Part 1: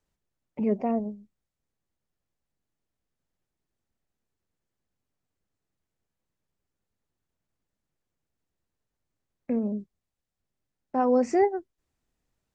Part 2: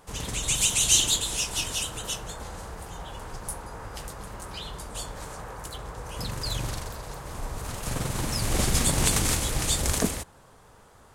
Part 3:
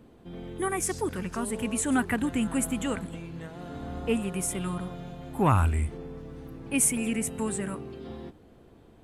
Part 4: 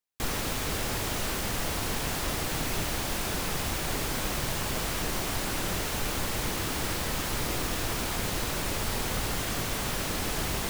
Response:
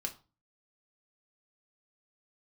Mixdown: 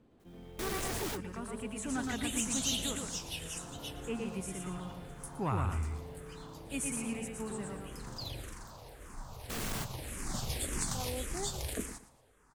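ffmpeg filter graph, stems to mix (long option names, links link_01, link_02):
-filter_complex "[0:a]highpass=frequency=270:poles=1,volume=-18.5dB,asplit=2[link_01][link_02];[1:a]asplit=2[link_03][link_04];[link_04]afreqshift=-1.8[link_05];[link_03][link_05]amix=inputs=2:normalize=1,adelay=1750,volume=-9.5dB,asplit=2[link_06][link_07];[link_07]volume=-15dB[link_08];[2:a]lowpass=9000,volume=-11dB,asplit=2[link_09][link_10];[link_10]volume=-3dB[link_11];[3:a]asoftclip=type=hard:threshold=-34.5dB,volume=-2dB[link_12];[link_02]apad=whole_len=471613[link_13];[link_12][link_13]sidechaingate=range=-33dB:threshold=-58dB:ratio=16:detection=peak[link_14];[link_08][link_11]amix=inputs=2:normalize=0,aecho=0:1:116|232|348|464:1|0.3|0.09|0.027[link_15];[link_01][link_06][link_09][link_14][link_15]amix=inputs=5:normalize=0,asoftclip=type=tanh:threshold=-20dB"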